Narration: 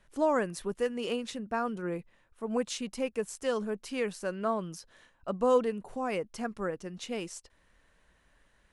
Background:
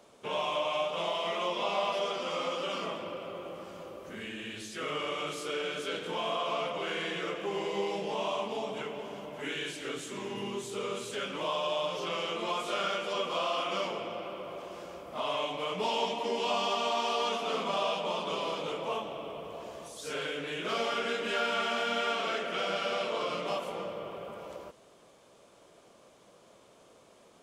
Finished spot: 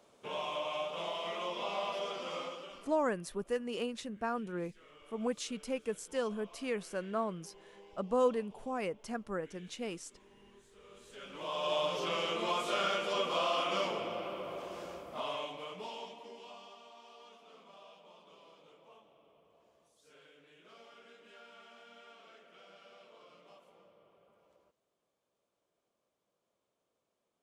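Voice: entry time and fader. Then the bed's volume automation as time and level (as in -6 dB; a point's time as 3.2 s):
2.70 s, -4.0 dB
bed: 2.38 s -6 dB
3.04 s -24.5 dB
10.78 s -24.5 dB
11.73 s -0.5 dB
14.9 s -0.5 dB
16.87 s -25.5 dB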